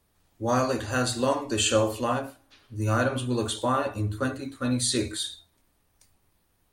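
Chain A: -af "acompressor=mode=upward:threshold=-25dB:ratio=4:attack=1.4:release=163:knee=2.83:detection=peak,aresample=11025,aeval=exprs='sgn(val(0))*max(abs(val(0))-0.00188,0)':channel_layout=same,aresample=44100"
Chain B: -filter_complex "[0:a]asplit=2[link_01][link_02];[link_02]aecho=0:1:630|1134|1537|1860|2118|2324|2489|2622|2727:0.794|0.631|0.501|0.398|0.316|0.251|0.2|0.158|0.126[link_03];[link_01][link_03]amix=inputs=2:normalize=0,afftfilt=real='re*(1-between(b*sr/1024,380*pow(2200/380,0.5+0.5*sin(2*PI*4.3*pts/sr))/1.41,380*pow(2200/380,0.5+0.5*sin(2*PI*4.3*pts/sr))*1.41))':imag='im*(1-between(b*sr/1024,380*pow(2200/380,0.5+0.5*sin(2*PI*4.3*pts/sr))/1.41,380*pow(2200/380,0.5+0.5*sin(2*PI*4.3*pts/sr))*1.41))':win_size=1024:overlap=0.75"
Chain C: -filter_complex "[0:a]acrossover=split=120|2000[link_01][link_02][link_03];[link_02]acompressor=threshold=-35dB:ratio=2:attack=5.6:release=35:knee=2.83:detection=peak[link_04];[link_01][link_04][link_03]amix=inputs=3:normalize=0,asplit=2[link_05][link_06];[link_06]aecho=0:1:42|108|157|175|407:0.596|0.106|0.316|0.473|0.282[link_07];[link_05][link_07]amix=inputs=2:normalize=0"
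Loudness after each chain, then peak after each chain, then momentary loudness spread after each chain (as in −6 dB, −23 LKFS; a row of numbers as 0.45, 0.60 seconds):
−27.5, −25.0, −28.0 LKFS; −10.5, −9.5, −10.0 dBFS; 21, 5, 13 LU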